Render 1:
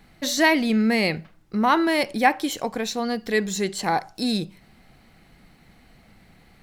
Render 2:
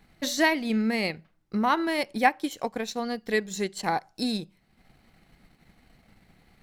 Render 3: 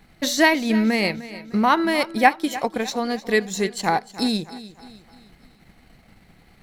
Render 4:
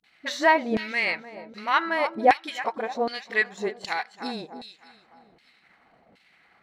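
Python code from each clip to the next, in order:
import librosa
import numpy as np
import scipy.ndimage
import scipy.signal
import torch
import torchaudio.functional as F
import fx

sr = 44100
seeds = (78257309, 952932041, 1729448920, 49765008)

y1 = fx.transient(x, sr, attack_db=4, sustain_db=-8)
y1 = F.gain(torch.from_numpy(y1), -5.5).numpy()
y2 = fx.echo_feedback(y1, sr, ms=303, feedback_pct=46, wet_db=-16.0)
y2 = F.gain(torch.from_numpy(y2), 6.0).numpy()
y3 = fx.dispersion(y2, sr, late='highs', ms=40.0, hz=340.0)
y3 = fx.filter_lfo_bandpass(y3, sr, shape='saw_down', hz=1.3, low_hz=480.0, high_hz=3700.0, q=1.3)
y3 = F.gain(torch.from_numpy(y3), 2.5).numpy()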